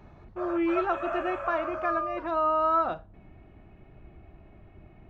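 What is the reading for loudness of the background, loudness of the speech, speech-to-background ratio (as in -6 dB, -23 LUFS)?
-34.0 LUFS, -28.5 LUFS, 5.5 dB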